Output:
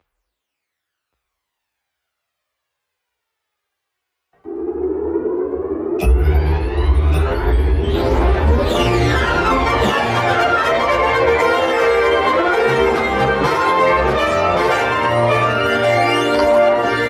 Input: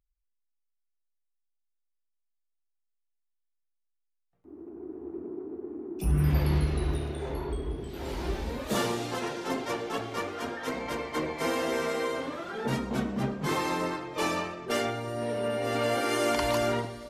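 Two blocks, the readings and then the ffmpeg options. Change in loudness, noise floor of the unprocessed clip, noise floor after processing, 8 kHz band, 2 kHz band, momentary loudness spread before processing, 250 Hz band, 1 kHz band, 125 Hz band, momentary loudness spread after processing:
+15.0 dB, -79 dBFS, -79 dBFS, +5.0 dB, +17.5 dB, 12 LU, +11.0 dB, +17.5 dB, +13.0 dB, 6 LU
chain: -filter_complex "[0:a]highpass=f=54:w=0.5412,highpass=f=54:w=1.3066,bandreject=f=50:t=h:w=6,bandreject=f=100:t=h:w=6,bandreject=f=150:t=h:w=6,acrossover=split=110[a][b];[a]dynaudnorm=f=120:g=17:m=12.5dB[c];[b]lowshelf=f=280:g=-8[d];[c][d]amix=inputs=2:normalize=0,acompressor=threshold=-30dB:ratio=8,bass=f=250:g=-12,treble=f=4k:g=-15,aphaser=in_gain=1:out_gain=1:delay=2.8:decay=0.56:speed=0.12:type=triangular,asplit=2[e][f];[f]aecho=0:1:1127:0.562[g];[e][g]amix=inputs=2:normalize=0,alimiter=level_in=30dB:limit=-1dB:release=50:level=0:latency=1,asplit=2[h][i];[i]adelay=10.2,afreqshift=1.4[j];[h][j]amix=inputs=2:normalize=1,volume=-2.5dB"

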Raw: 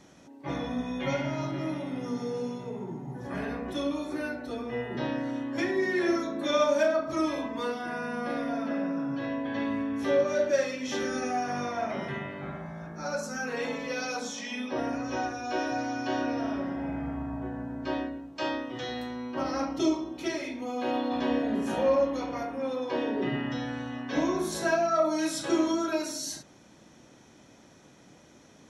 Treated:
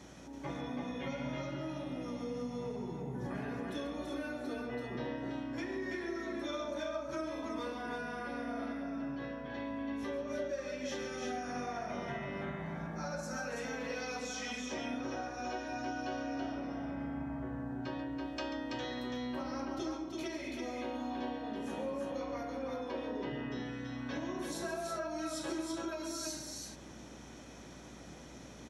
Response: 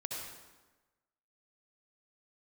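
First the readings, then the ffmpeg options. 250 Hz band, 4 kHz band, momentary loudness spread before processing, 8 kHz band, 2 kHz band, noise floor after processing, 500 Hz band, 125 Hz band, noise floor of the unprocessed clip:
-8.5 dB, -7.0 dB, 10 LU, -6.0 dB, -8.0 dB, -51 dBFS, -10.5 dB, -5.5 dB, -55 dBFS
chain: -filter_complex "[0:a]acompressor=threshold=-41dB:ratio=6,aeval=exprs='val(0)+0.000794*(sin(2*PI*60*n/s)+sin(2*PI*2*60*n/s)/2+sin(2*PI*3*60*n/s)/3+sin(2*PI*4*60*n/s)/4+sin(2*PI*5*60*n/s)/5)':c=same,asplit=2[a][b];[b]aecho=0:1:138|331:0.299|0.668[c];[a][c]amix=inputs=2:normalize=0,volume=2dB"

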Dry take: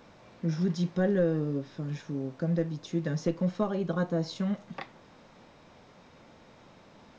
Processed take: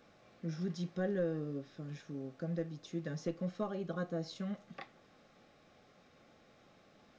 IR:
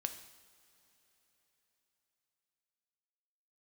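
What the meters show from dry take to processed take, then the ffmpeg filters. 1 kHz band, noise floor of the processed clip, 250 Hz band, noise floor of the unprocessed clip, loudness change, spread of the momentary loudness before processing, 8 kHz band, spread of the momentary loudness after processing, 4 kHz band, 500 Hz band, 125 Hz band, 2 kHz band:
-8.0 dB, -65 dBFS, -9.5 dB, -56 dBFS, -9.0 dB, 10 LU, n/a, 10 LU, -7.5 dB, -8.0 dB, -10.0 dB, -7.5 dB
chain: -af "asuperstop=centerf=950:order=20:qfactor=5.9,lowshelf=f=200:g=-4.5,volume=-7.5dB"

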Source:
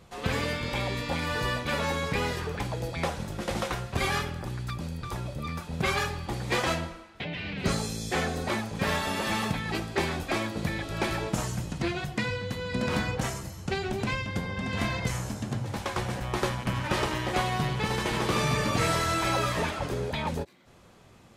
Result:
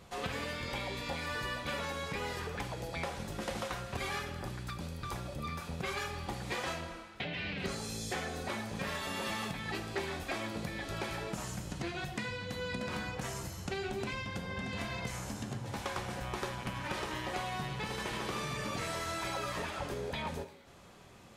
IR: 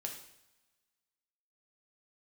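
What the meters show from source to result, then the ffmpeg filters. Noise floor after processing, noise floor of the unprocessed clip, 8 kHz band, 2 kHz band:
-53 dBFS, -54 dBFS, -7.0 dB, -7.0 dB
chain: -filter_complex "[0:a]acompressor=threshold=-34dB:ratio=6,asplit=2[a][b];[1:a]atrim=start_sample=2205,lowshelf=f=330:g=-8[c];[b][c]afir=irnorm=-1:irlink=0,volume=3dB[d];[a][d]amix=inputs=2:normalize=0,volume=-5.5dB"

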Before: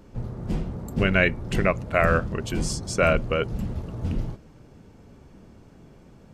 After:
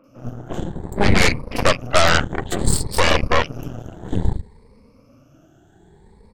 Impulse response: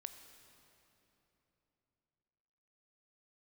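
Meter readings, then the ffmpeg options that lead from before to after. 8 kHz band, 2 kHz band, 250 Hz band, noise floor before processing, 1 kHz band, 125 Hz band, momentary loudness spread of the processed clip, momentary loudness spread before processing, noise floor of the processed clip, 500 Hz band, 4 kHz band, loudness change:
+10.5 dB, +4.5 dB, +3.0 dB, -51 dBFS, +7.5 dB, +3.5 dB, 17 LU, 11 LU, -53 dBFS, +3.0 dB, +13.0 dB, +5.0 dB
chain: -filter_complex "[0:a]afftfilt=real='re*pow(10,19/40*sin(2*PI*(0.91*log(max(b,1)*sr/1024/100)/log(2)-(0.59)*(pts-256)/sr)))':imag='im*pow(10,19/40*sin(2*PI*(0.91*log(max(b,1)*sr/1024/100)/log(2)-(0.59)*(pts-256)/sr)))':win_size=1024:overlap=0.75,acrossover=split=180|2600[a][b][c];[c]adelay=40[d];[a]adelay=80[e];[e][b][d]amix=inputs=3:normalize=0,aeval=exprs='0.708*(cos(1*acos(clip(val(0)/0.708,-1,1)))-cos(1*PI/2))+0.316*(cos(8*acos(clip(val(0)/0.708,-1,1)))-cos(8*PI/2))':c=same,volume=-3.5dB"

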